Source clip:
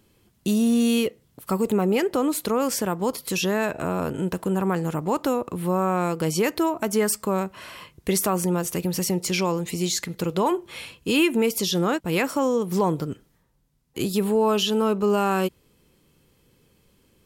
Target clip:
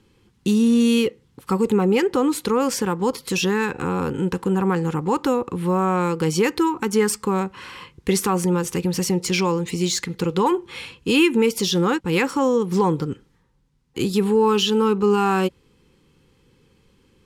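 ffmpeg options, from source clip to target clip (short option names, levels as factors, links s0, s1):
-af "adynamicsmooth=sensitivity=4:basefreq=7400,asuperstop=centerf=640:order=8:qfactor=3.5,volume=1.5"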